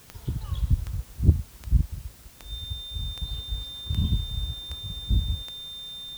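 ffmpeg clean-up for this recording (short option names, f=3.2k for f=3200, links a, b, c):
-af "adeclick=t=4,bandreject=f=3.6k:w=30,afwtdn=0.0022"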